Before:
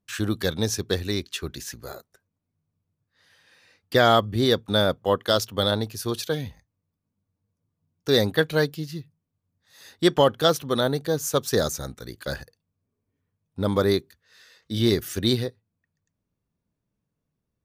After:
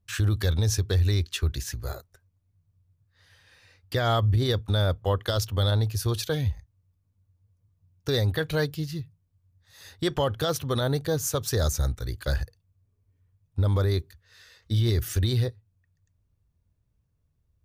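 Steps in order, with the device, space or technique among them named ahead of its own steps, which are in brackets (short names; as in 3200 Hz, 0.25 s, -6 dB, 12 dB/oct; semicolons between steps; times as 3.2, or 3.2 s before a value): car stereo with a boomy subwoofer (resonant low shelf 130 Hz +13.5 dB, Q 1.5; limiter -16 dBFS, peak gain reduction 10 dB)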